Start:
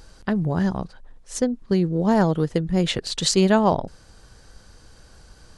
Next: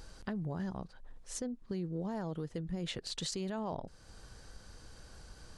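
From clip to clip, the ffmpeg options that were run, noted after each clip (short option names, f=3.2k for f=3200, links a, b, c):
-af "alimiter=limit=-14.5dB:level=0:latency=1:release=15,acompressor=threshold=-40dB:ratio=2,volume=-4dB"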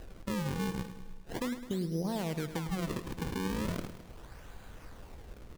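-filter_complex "[0:a]acrusher=samples=38:mix=1:aa=0.000001:lfo=1:lforange=60.8:lforate=0.38,asplit=2[a][b];[b]aecho=0:1:105|210|315|420|525|630:0.251|0.146|0.0845|0.049|0.0284|0.0165[c];[a][c]amix=inputs=2:normalize=0,volume=3.5dB"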